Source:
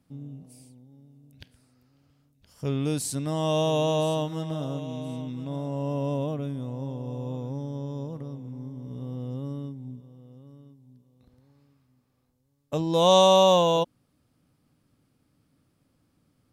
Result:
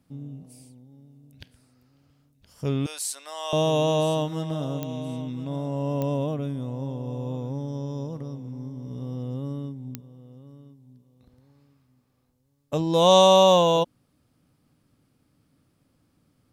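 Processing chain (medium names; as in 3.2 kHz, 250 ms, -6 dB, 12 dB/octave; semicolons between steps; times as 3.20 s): 2.86–3.53 s: Bessel high-pass 1 kHz, order 4; 7.68–9.23 s: peaking EQ 5.4 kHz +6.5 dB 0.39 oct; clicks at 4.83/6.02/9.95 s, -18 dBFS; trim +2 dB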